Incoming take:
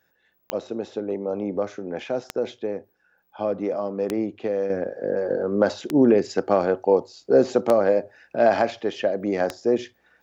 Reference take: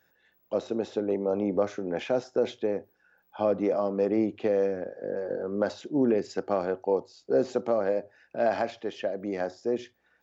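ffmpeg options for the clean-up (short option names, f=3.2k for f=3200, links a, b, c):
-af "adeclick=t=4,asetnsamples=n=441:p=0,asendcmd='4.7 volume volume -7.5dB',volume=0dB"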